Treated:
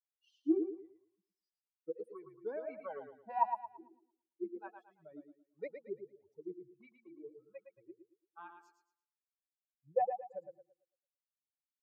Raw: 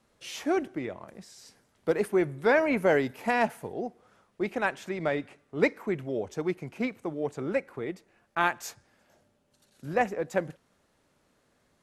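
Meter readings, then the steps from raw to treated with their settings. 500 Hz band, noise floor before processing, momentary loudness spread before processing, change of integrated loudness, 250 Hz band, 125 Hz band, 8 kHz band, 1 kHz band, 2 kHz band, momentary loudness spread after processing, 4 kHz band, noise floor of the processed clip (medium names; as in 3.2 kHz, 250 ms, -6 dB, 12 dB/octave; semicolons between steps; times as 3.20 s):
-14.0 dB, -70 dBFS, 15 LU, -10.5 dB, -11.0 dB, -30.0 dB, under -30 dB, -7.5 dB, -27.5 dB, 23 LU, under -30 dB, under -85 dBFS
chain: expander on every frequency bin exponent 3; de-hum 115.7 Hz, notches 3; dynamic bell 350 Hz, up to -3 dB, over -44 dBFS, Q 0.77; wah-wah 1.5 Hz 320–1100 Hz, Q 18; on a send: thinning echo 112 ms, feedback 32%, high-pass 160 Hz, level -7 dB; on the sum: trim +12.5 dB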